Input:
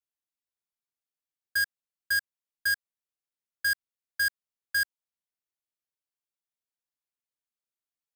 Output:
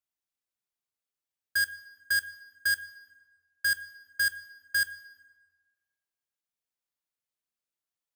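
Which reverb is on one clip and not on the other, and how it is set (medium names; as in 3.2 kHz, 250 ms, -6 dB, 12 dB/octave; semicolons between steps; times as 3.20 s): plate-style reverb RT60 1.4 s, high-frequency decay 0.65×, DRR 13.5 dB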